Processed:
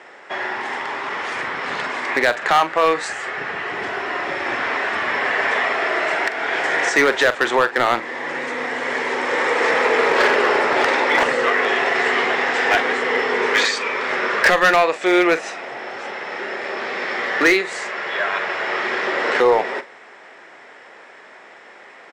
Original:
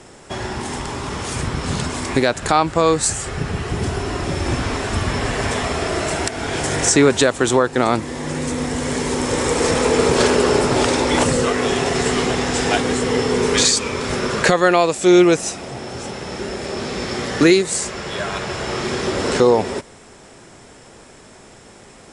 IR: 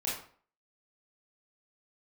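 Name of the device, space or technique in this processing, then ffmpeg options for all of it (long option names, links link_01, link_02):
megaphone: -filter_complex "[0:a]highpass=570,lowpass=2700,equalizer=frequency=1900:width_type=o:width=0.54:gain=8,asoftclip=type=hard:threshold=-11.5dB,asplit=2[link_01][link_02];[link_02]adelay=43,volume=-13.5dB[link_03];[link_01][link_03]amix=inputs=2:normalize=0,volume=3dB"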